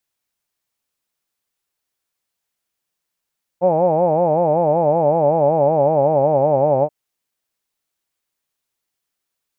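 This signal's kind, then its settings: formant-synthesis vowel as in hawed, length 3.28 s, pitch 171 Hz, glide -3.5 st, vibrato depth 1.45 st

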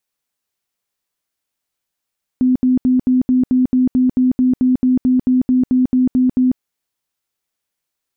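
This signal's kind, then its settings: tone bursts 254 Hz, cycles 37, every 0.22 s, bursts 19, -10 dBFS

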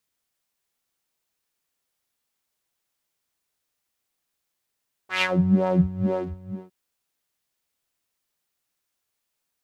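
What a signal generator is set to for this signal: synth patch with filter wobble F#3, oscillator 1 saw, oscillator 2 square, interval 0 st, oscillator 2 level -3.5 dB, sub -12.5 dB, filter bandpass, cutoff 130 Hz, Q 2.6, filter envelope 3 oct, filter decay 0.67 s, filter sustain 10%, attack 128 ms, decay 0.06 s, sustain -10 dB, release 0.61 s, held 1.00 s, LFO 2.1 Hz, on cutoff 1.8 oct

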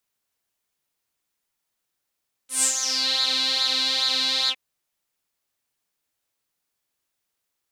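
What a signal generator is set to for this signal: synth patch with pulse-width modulation C4, filter bandpass, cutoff 2.5 kHz, Q 7.2, filter envelope 2 oct, filter decay 0.58 s, filter sustain 35%, attack 139 ms, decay 0.10 s, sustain -8.5 dB, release 0.06 s, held 2.00 s, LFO 2.4 Hz, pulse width 26%, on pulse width 17%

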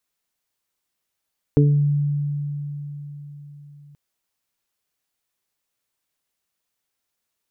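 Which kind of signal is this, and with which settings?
additive tone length 2.38 s, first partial 145 Hz, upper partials -1/-4.5 dB, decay 4.41 s, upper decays 0.35/0.41 s, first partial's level -12 dB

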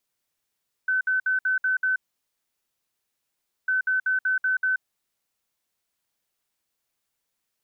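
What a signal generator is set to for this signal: beep pattern sine 1.52 kHz, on 0.13 s, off 0.06 s, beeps 6, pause 1.72 s, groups 2, -20 dBFS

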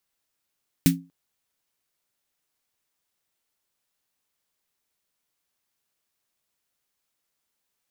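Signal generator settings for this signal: snare drum length 0.24 s, tones 170 Hz, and 270 Hz, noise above 1.6 kHz, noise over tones -6 dB, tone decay 0.30 s, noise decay 0.14 s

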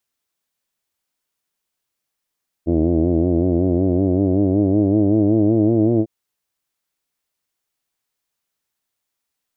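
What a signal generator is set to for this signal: formant vowel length 3.40 s, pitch 81 Hz, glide +6 st, F1 320 Hz, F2 640 Hz, F3 2.2 kHz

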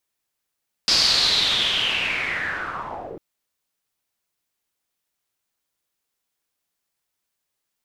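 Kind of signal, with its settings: swept filtered noise white, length 2.30 s lowpass, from 4.9 kHz, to 380 Hz, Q 6.4, linear, gain ramp -8 dB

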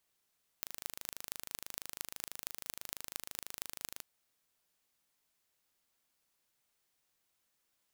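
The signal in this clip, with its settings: pulse train 26.1 per s, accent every 6, -9.5 dBFS 3.40 s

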